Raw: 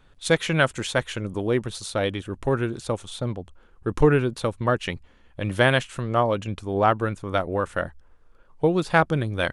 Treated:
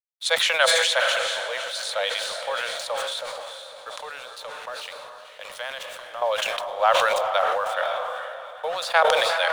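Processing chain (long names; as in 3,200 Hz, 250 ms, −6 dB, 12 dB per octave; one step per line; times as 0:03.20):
Butterworth high-pass 520 Hz 72 dB per octave
parametric band 3,900 Hz +7.5 dB 0.78 octaves
0:03.97–0:06.22: downward compressor 2.5 to 1, threshold −39 dBFS, peak gain reduction 16 dB
dead-zone distortion −49 dBFS
feedback delay with all-pass diffusion 474 ms, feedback 50%, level −9 dB
level that may fall only so fast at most 22 dB per second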